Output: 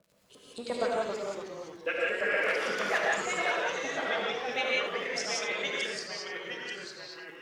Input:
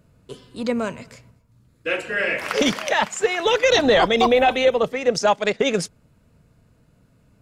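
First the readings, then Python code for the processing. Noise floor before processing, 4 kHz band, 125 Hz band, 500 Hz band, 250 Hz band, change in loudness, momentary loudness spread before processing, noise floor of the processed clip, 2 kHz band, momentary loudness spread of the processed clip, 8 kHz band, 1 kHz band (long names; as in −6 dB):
−60 dBFS, −9.5 dB, −16.0 dB, −12.5 dB, −16.5 dB, −11.0 dB, 11 LU, −55 dBFS, −5.5 dB, 12 LU, −8.0 dB, −11.5 dB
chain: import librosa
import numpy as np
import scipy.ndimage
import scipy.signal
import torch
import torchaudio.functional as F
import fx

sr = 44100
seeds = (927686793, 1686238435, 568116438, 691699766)

p1 = fx.high_shelf(x, sr, hz=6800.0, db=11.0)
p2 = fx.over_compress(p1, sr, threshold_db=-22.0, ratio=-1.0)
p3 = p2 * (1.0 - 0.86 / 2.0 + 0.86 / 2.0 * np.cos(2.0 * np.pi * 8.5 * (np.arange(len(p2)) / sr)))
p4 = fx.rotary(p3, sr, hz=6.7)
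p5 = fx.filter_lfo_bandpass(p4, sr, shape='saw_up', hz=8.6, low_hz=540.0, high_hz=5900.0, q=1.3)
p6 = fx.dmg_crackle(p5, sr, seeds[0], per_s=28.0, level_db=-49.0)
p7 = p6 + fx.echo_single(p6, sr, ms=77, db=-10.0, dry=0)
p8 = fx.rev_gated(p7, sr, seeds[1], gate_ms=200, shape='rising', drr_db=-3.5)
p9 = fx.echo_pitch(p8, sr, ms=173, semitones=-2, count=3, db_per_echo=-6.0)
y = F.gain(torch.from_numpy(p9), -2.0).numpy()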